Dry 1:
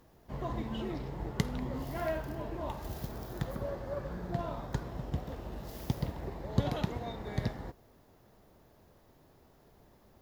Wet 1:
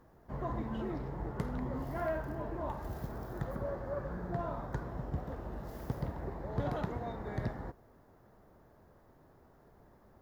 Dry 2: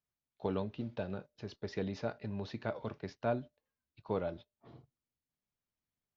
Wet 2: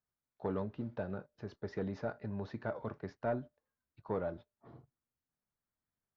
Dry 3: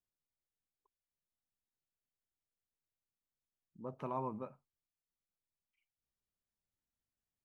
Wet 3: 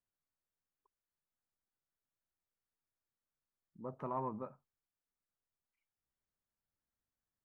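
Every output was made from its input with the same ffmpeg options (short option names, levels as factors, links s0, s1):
-af "asoftclip=type=tanh:threshold=0.0501,highshelf=f=2100:t=q:w=1.5:g=-8"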